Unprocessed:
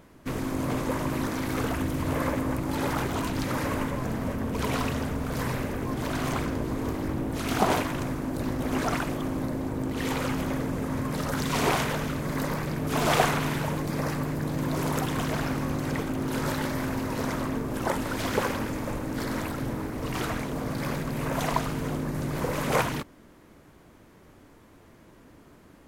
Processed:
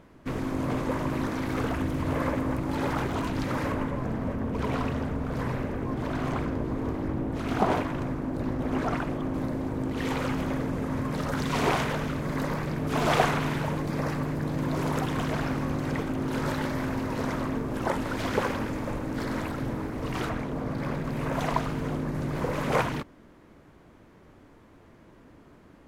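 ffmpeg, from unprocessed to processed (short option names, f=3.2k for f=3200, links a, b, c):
-af "asetnsamples=n=441:p=0,asendcmd='3.72 lowpass f 1600;9.34 lowpass f 3900;20.29 lowpass f 1700;21.04 lowpass f 3200',lowpass=f=3.3k:p=1"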